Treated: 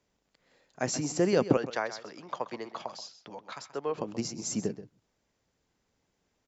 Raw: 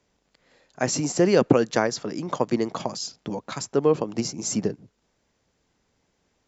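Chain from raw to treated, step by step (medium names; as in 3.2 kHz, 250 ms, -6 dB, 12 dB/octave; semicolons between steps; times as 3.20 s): 1.57–3.98 s: three-band isolator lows -14 dB, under 540 Hz, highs -18 dB, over 5.3 kHz; delay 130 ms -13.5 dB; trim -6.5 dB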